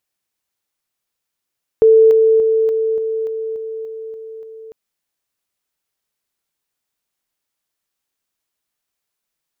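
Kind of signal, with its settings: level ladder 444 Hz -5.5 dBFS, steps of -3 dB, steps 10, 0.29 s 0.00 s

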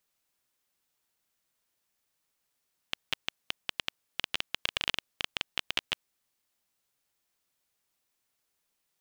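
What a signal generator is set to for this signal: random clicks 12 per s -10.5 dBFS 3.13 s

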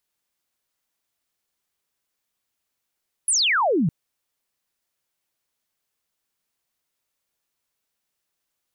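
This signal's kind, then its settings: laser zap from 11 kHz, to 140 Hz, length 0.61 s sine, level -17 dB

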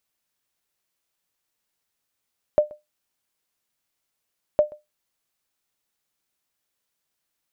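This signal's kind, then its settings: sonar ping 600 Hz, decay 0.18 s, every 2.01 s, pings 2, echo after 0.13 s, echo -24.5 dB -8.5 dBFS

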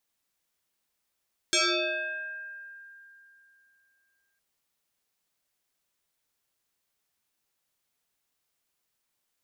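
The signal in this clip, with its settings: FM tone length 2.86 s, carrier 1.6 kHz, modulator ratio 0.61, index 6.9, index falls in 1.61 s exponential, decay 3.05 s, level -20 dB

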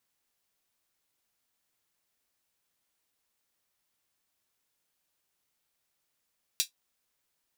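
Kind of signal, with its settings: closed hi-hat, high-pass 3.6 kHz, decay 0.12 s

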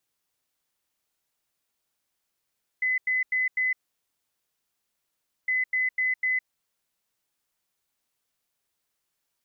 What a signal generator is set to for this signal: beep pattern sine 2.02 kHz, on 0.16 s, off 0.09 s, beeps 4, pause 1.75 s, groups 2, -22 dBFS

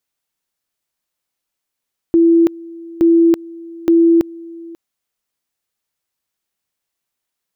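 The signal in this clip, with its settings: two-level tone 334 Hz -7 dBFS, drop 22.5 dB, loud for 0.33 s, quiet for 0.54 s, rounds 3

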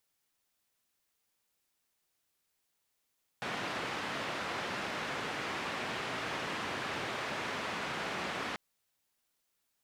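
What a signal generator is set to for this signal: noise band 120–2100 Hz, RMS -37.5 dBFS 5.14 s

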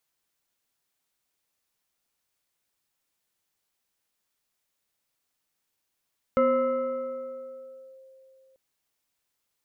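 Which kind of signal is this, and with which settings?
FM tone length 2.19 s, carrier 529 Hz, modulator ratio 1.47, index 0.83, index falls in 1.62 s linear, decay 3.17 s, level -17 dB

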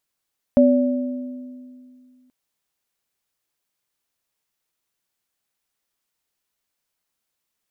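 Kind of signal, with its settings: sine partials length 1.73 s, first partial 253 Hz, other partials 575 Hz, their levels -1 dB, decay 2.36 s, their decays 1.46 s, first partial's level -11 dB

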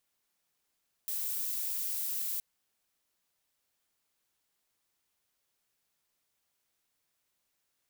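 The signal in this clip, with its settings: noise violet, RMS -34.5 dBFS 1.32 s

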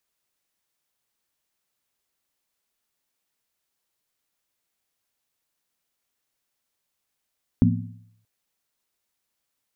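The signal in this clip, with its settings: skin hit, lowest mode 109 Hz, modes 4, decay 0.74 s, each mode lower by 0 dB, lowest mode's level -16.5 dB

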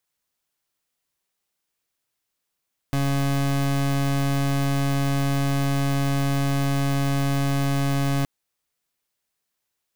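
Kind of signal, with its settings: pulse 139 Hz, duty 30% -22 dBFS 5.32 s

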